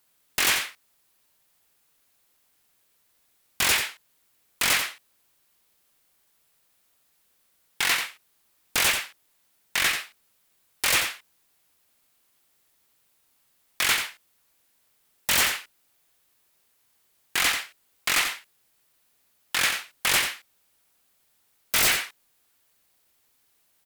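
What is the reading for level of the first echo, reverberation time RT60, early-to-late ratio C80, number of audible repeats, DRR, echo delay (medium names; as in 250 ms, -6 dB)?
-7.5 dB, no reverb, no reverb, 1, no reverb, 89 ms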